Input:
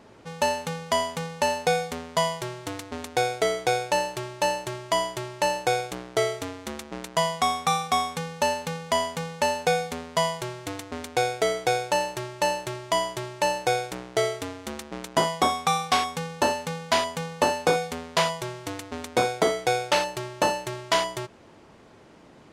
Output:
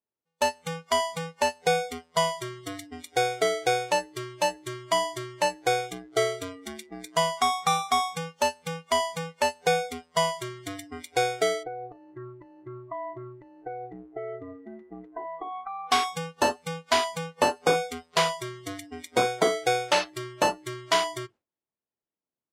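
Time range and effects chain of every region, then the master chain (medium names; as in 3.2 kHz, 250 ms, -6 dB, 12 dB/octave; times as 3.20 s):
11.63–15.92 s: compression 16:1, threshold -28 dBFS + low-pass 1.5 kHz
whole clip: spectral noise reduction 24 dB; gate with hold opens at -44 dBFS; bass shelf 200 Hz -3.5 dB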